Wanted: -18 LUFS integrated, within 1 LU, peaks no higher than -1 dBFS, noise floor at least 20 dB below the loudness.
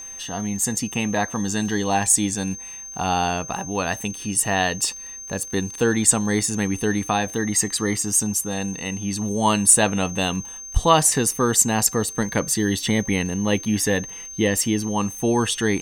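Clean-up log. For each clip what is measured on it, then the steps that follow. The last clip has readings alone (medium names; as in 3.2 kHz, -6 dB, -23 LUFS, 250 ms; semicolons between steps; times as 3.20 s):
tick rate 21 per s; steady tone 6.3 kHz; tone level -34 dBFS; loudness -21.0 LUFS; peak level -1.5 dBFS; loudness target -18.0 LUFS
-> de-click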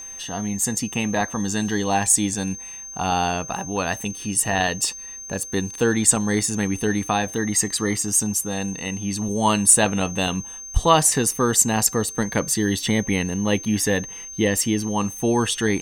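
tick rate 0.25 per s; steady tone 6.3 kHz; tone level -34 dBFS
-> band-stop 6.3 kHz, Q 30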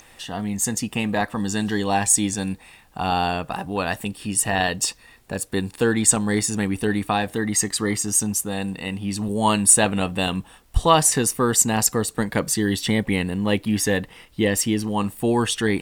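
steady tone not found; loudness -21.5 LUFS; peak level -1.0 dBFS; loudness target -18.0 LUFS
-> trim +3.5 dB; peak limiter -1 dBFS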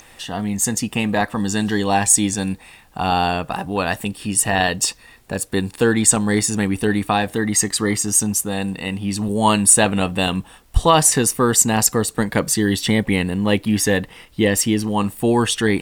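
loudness -18.5 LUFS; peak level -1.0 dBFS; noise floor -48 dBFS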